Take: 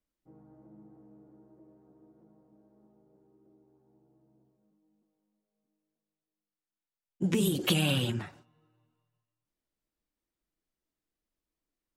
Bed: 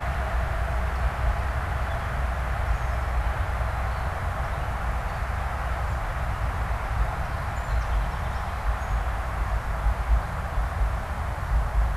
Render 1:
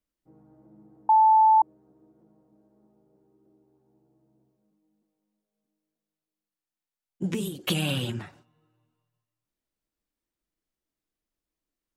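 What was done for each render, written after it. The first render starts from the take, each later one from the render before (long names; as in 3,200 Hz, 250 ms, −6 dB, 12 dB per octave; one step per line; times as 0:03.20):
0:01.09–0:01.62: beep over 876 Hz −14 dBFS
0:07.26–0:07.67: fade out, to −18 dB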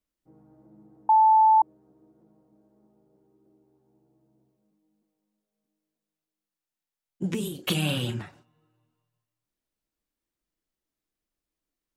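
0:07.40–0:08.22: double-tracking delay 33 ms −10 dB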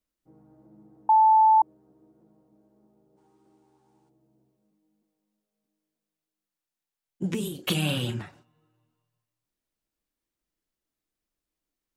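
0:03.18–0:04.09: gain on a spectral selection 760–9,900 Hz +11 dB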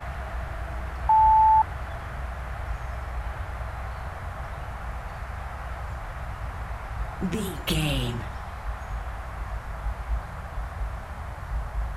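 mix in bed −6.5 dB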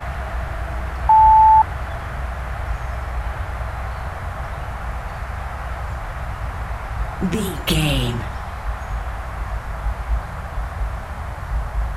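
level +7 dB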